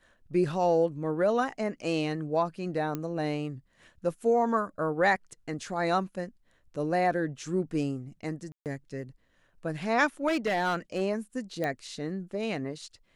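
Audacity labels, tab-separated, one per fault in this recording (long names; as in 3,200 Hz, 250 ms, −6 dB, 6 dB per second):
2.950000	2.950000	click −19 dBFS
8.520000	8.660000	drop-out 138 ms
10.270000	11.020000	clipping −23 dBFS
11.640000	11.640000	click −18 dBFS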